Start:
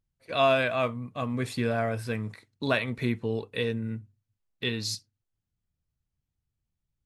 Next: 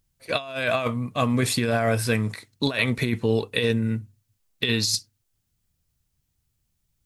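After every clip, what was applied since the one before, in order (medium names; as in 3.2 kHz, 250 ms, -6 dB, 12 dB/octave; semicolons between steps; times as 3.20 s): treble shelf 3.8 kHz +9.5 dB; compressor with a negative ratio -28 dBFS, ratio -0.5; trim +6 dB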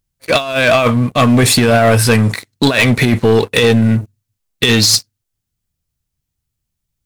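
waveshaping leveller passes 3; trim +4 dB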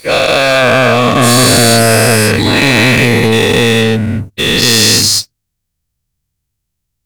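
every event in the spectrogram widened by 480 ms; sine folder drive 8 dB, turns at 12.5 dBFS; trim -15 dB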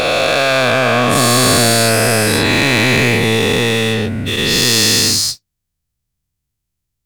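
every event in the spectrogram widened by 240 ms; on a send at -15 dB: reverberation, pre-delay 3 ms; on the sum: trim -8 dB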